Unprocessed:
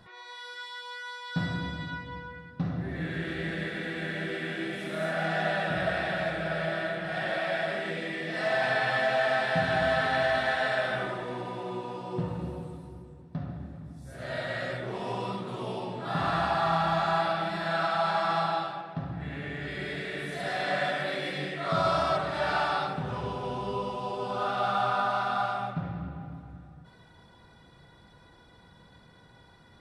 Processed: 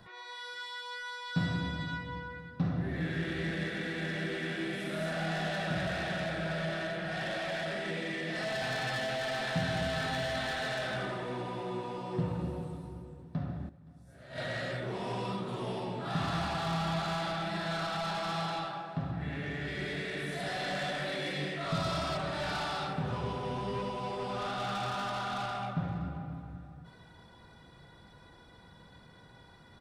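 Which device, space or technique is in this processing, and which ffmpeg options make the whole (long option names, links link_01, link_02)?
one-band saturation: -filter_complex "[0:a]acrossover=split=300|3300[link_01][link_02][link_03];[link_02]asoftclip=type=tanh:threshold=-34.5dB[link_04];[link_01][link_04][link_03]amix=inputs=3:normalize=0,asettb=1/sr,asplit=3[link_05][link_06][link_07];[link_05]atrim=end=13.694[link_08];[link_06]atrim=start=13.69:end=14.38,asetpts=PTS-STARTPTS,afade=type=in:duration=0.004:curve=qsin,afade=type=out:start_time=0.686:duration=0.004:curve=qsin,agate=range=-13dB:threshold=-35dB:ratio=16:detection=peak[link_09];[link_07]atrim=start=14.376[link_10];[link_08][link_09]acrossfade=duration=0.004:curve1=hsin:curve2=qsin[link_11];[link_11][link_10]acrossfade=duration=0.004:curve1=qsin:curve2=hsin,aecho=1:1:520:0.075"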